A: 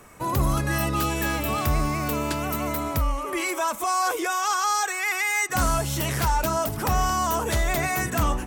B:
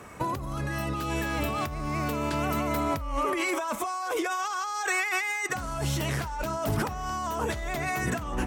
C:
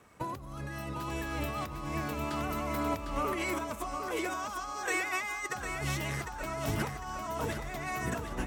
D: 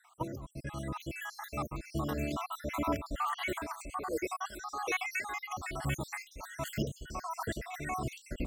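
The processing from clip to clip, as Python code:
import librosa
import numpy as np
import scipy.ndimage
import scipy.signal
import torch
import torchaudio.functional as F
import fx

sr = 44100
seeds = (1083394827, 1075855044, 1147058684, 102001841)

y1 = scipy.signal.sosfilt(scipy.signal.butter(2, 43.0, 'highpass', fs=sr, output='sos'), x)
y1 = fx.high_shelf(y1, sr, hz=7500.0, db=-11.0)
y1 = fx.over_compress(y1, sr, threshold_db=-30.0, ratio=-1.0)
y2 = fx.echo_feedback(y1, sr, ms=753, feedback_pct=44, wet_db=-5.5)
y2 = np.sign(y2) * np.maximum(np.abs(y2) - 10.0 ** (-55.0 / 20.0), 0.0)
y2 = fx.upward_expand(y2, sr, threshold_db=-38.0, expansion=1.5)
y2 = y2 * 10.0 ** (-4.5 / 20.0)
y3 = fx.spec_dropout(y2, sr, seeds[0], share_pct=65)
y3 = y3 * 10.0 ** (2.0 / 20.0)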